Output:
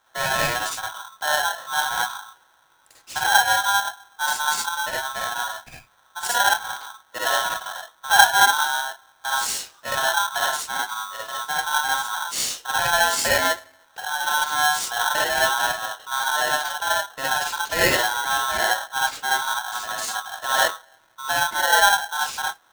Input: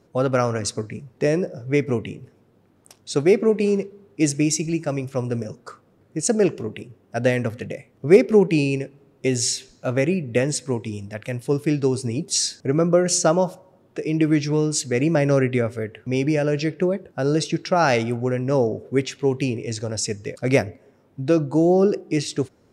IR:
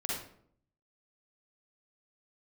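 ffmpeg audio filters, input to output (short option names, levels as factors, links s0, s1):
-filter_complex "[1:a]atrim=start_sample=2205,atrim=end_sample=4410,asetrate=41895,aresample=44100[s0];[0:a][s0]afir=irnorm=-1:irlink=0,aeval=exprs='val(0)*sgn(sin(2*PI*1200*n/s))':c=same,volume=0.531"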